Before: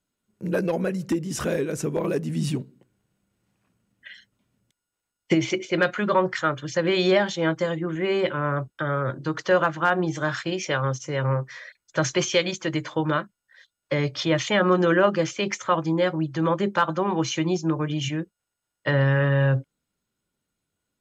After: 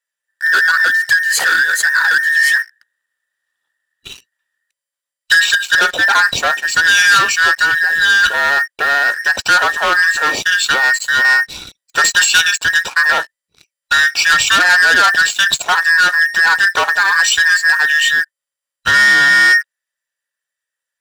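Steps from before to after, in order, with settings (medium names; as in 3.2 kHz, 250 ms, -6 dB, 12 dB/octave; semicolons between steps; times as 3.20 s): every band turned upside down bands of 2 kHz; waveshaping leveller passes 3; tilt shelf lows -7.5 dB, about 780 Hz; trim -1.5 dB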